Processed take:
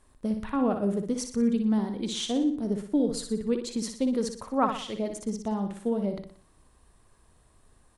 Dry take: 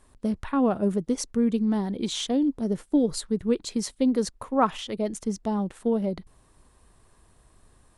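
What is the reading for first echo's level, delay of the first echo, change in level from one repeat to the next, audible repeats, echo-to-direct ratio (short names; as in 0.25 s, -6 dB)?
-7.0 dB, 60 ms, -7.0 dB, 5, -6.0 dB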